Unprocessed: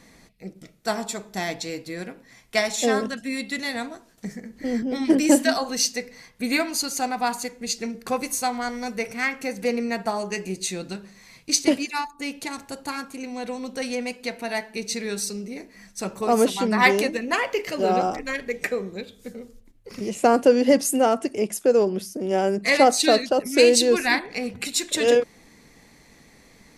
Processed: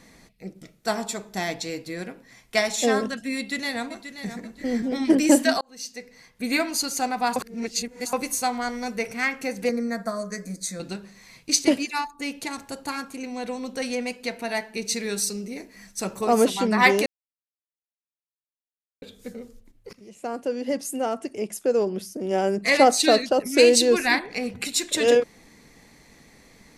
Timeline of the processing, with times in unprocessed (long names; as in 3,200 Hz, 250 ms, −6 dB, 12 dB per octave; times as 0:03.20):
0:03.37–0:04.42: delay throw 530 ms, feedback 30%, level −10.5 dB
0:05.61–0:06.65: fade in
0:07.36–0:08.13: reverse
0:09.69–0:10.80: phaser with its sweep stopped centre 560 Hz, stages 8
0:14.85–0:16.25: high-shelf EQ 5,900 Hz +5 dB
0:17.06–0:19.02: silence
0:19.93–0:22.81: fade in linear, from −21 dB